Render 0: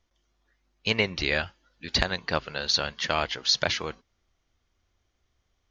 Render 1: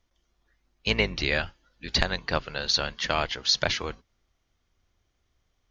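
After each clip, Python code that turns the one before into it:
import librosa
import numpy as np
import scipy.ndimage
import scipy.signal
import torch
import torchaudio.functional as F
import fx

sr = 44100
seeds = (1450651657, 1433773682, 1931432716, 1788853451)

y = fx.octave_divider(x, sr, octaves=2, level_db=-2.0)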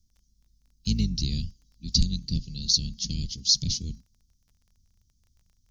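y = scipy.signal.sosfilt(scipy.signal.ellip(3, 1.0, 70, [210.0, 5100.0], 'bandstop', fs=sr, output='sos'), x)
y = fx.dmg_crackle(y, sr, seeds[0], per_s=21.0, level_db=-58.0)
y = F.gain(torch.from_numpy(y), 7.0).numpy()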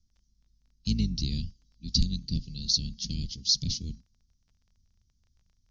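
y = scipy.signal.sosfilt(scipy.signal.butter(4, 6100.0, 'lowpass', fs=sr, output='sos'), x)
y = fx.dynamic_eq(y, sr, hz=260.0, q=2.9, threshold_db=-43.0, ratio=4.0, max_db=3)
y = F.gain(torch.from_numpy(y), -2.5).numpy()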